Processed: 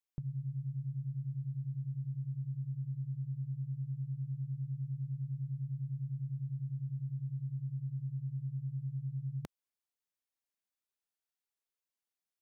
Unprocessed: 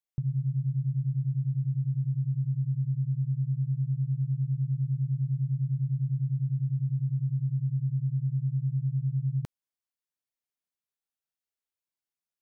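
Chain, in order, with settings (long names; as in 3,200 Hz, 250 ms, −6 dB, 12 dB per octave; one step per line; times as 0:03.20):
parametric band 110 Hz −12.5 dB 0.77 octaves
level −2 dB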